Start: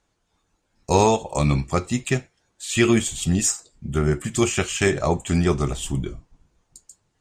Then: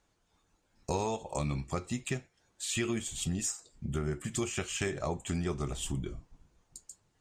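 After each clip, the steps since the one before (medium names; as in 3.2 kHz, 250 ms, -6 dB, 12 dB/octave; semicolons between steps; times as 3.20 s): compression 3:1, threshold -31 dBFS, peak gain reduction 14 dB; trim -2.5 dB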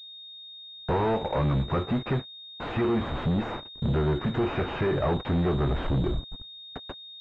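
waveshaping leveller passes 5; class-D stage that switches slowly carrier 3.7 kHz; trim -2.5 dB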